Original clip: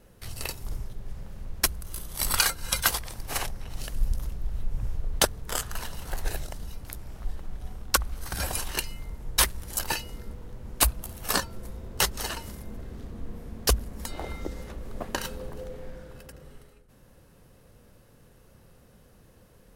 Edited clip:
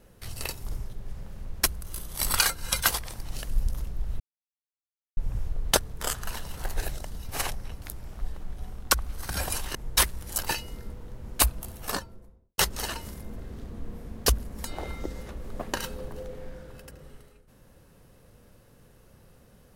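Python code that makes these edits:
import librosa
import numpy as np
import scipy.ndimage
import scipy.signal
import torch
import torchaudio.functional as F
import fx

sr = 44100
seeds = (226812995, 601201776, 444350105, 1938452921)

y = fx.studio_fade_out(x, sr, start_s=10.97, length_s=1.02)
y = fx.edit(y, sr, fx.move(start_s=3.25, length_s=0.45, to_s=6.77),
    fx.insert_silence(at_s=4.65, length_s=0.97),
    fx.cut(start_s=8.78, length_s=0.38), tone=tone)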